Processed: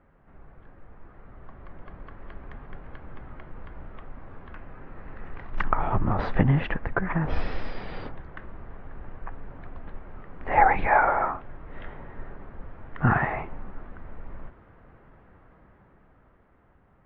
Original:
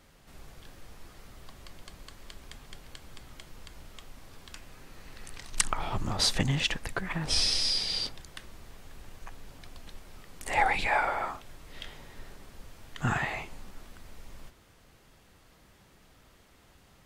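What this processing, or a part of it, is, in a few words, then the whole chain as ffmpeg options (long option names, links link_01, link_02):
action camera in a waterproof case: -af "lowpass=frequency=1700:width=0.5412,lowpass=frequency=1700:width=1.3066,dynaudnorm=framelen=150:gausssize=21:maxgain=8dB" -ar 44100 -c:a aac -b:a 48k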